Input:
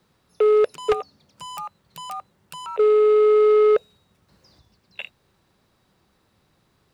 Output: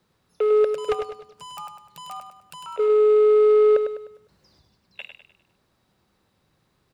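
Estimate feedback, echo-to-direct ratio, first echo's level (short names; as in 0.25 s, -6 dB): 41%, -6.5 dB, -7.5 dB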